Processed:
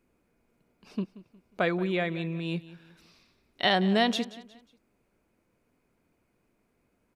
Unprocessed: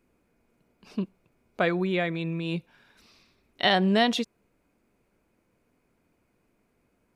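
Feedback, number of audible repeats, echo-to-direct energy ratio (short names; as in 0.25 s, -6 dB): 37%, 3, -17.0 dB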